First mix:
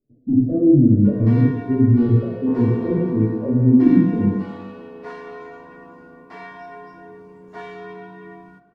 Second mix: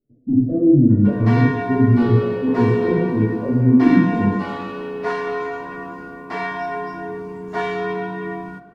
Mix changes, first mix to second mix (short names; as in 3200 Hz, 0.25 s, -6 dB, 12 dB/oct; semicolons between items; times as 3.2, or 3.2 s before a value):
first sound +12.0 dB; second sound: remove air absorption 400 m